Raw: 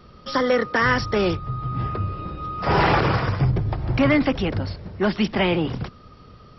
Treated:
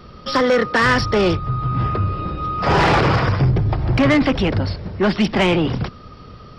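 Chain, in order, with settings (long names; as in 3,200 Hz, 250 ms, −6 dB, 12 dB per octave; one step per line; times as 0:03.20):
soft clipping −17 dBFS, distortion −13 dB
level +7 dB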